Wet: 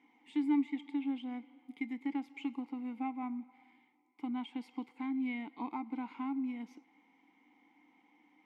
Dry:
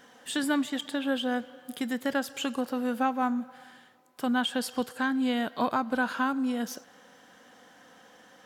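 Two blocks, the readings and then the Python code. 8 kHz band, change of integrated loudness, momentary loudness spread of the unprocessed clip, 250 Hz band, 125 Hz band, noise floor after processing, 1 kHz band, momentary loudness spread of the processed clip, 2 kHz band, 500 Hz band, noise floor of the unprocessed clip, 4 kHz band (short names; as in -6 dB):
under -30 dB, -8.5 dB, 7 LU, -6.5 dB, n/a, -70 dBFS, -13.5 dB, 12 LU, -16.5 dB, -22.0 dB, -57 dBFS, -20.5 dB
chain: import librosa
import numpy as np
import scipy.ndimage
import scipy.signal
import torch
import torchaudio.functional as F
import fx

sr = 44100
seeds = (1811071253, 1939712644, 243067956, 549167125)

y = fx.vowel_filter(x, sr, vowel='u')
y = fx.peak_eq(y, sr, hz=2100.0, db=14.5, octaves=0.2)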